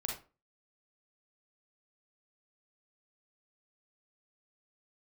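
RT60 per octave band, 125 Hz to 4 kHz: 0.35, 0.40, 0.35, 0.30, 0.25, 0.20 s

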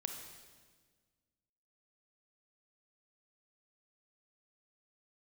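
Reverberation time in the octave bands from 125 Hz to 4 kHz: 2.0, 2.0, 1.6, 1.4, 1.4, 1.4 s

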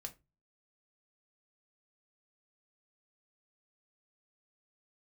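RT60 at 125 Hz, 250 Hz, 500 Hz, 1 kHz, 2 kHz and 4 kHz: 0.50, 0.35, 0.25, 0.20, 0.20, 0.15 s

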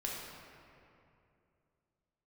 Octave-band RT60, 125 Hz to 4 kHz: 3.4, 3.0, 2.8, 2.5, 2.2, 1.6 s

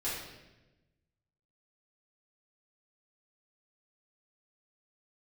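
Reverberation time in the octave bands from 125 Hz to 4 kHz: 1.6, 1.4, 1.2, 0.90, 1.0, 0.90 s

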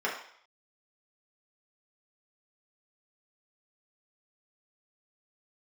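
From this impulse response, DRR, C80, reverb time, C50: -5.5 dB, 9.0 dB, 0.60 s, 5.5 dB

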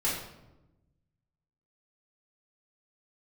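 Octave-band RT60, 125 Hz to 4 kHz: 1.7, 1.4, 1.1, 0.90, 0.70, 0.60 s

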